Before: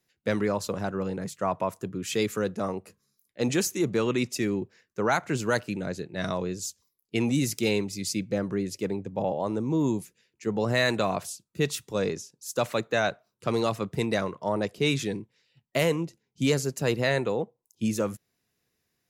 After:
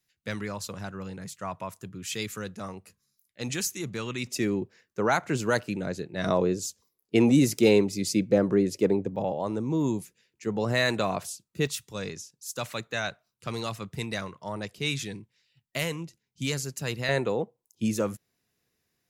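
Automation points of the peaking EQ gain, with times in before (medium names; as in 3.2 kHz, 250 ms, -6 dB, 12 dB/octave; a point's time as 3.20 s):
peaking EQ 440 Hz 2.7 oct
-11 dB
from 4.27 s +0.5 dB
from 6.26 s +7.5 dB
from 9.16 s -1.5 dB
from 11.67 s -10 dB
from 17.09 s 0 dB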